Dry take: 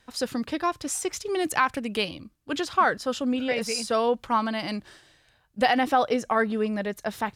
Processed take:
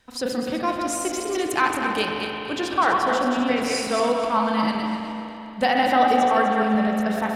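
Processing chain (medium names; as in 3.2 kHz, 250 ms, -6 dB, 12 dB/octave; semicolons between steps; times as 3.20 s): backward echo that repeats 125 ms, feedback 54%, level -4.5 dB; spring tank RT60 3.2 s, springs 37/41 ms, chirp 20 ms, DRR 2 dB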